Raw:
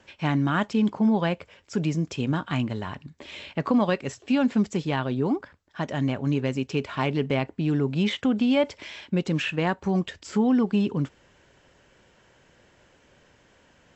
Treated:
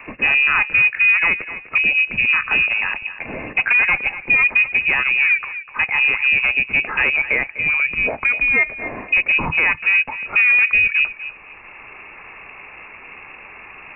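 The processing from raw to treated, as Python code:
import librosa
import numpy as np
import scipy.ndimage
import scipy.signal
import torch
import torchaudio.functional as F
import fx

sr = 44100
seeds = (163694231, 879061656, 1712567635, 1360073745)

y = fx.bessel_highpass(x, sr, hz=360.0, order=2, at=(7.16, 8.85))
y = fx.fold_sine(y, sr, drive_db=6, ceiling_db=-10.5)
y = fx.echo_feedback(y, sr, ms=249, feedback_pct=17, wet_db=-16)
y = fx.freq_invert(y, sr, carrier_hz=2700)
y = fx.band_squash(y, sr, depth_pct=40)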